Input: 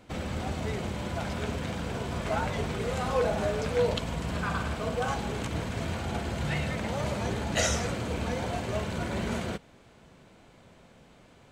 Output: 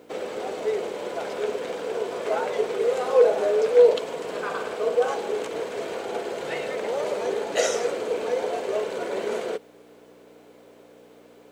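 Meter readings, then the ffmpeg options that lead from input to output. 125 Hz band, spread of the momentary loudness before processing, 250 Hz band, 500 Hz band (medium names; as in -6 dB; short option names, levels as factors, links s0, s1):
under -15 dB, 6 LU, -4.5 dB, +10.5 dB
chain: -af "aeval=exprs='val(0)+0.00891*(sin(2*PI*60*n/s)+sin(2*PI*2*60*n/s)/2+sin(2*PI*3*60*n/s)/3+sin(2*PI*4*60*n/s)/4+sin(2*PI*5*60*n/s)/5)':c=same,highpass=f=440:t=q:w=4.9,acrusher=bits=10:mix=0:aa=0.000001"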